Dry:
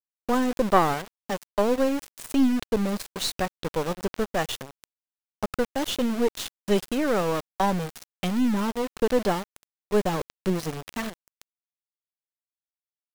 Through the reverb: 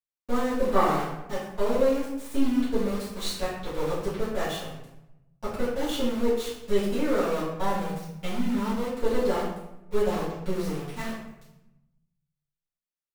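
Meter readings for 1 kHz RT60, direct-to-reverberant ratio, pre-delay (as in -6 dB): 0.85 s, -13.5 dB, 4 ms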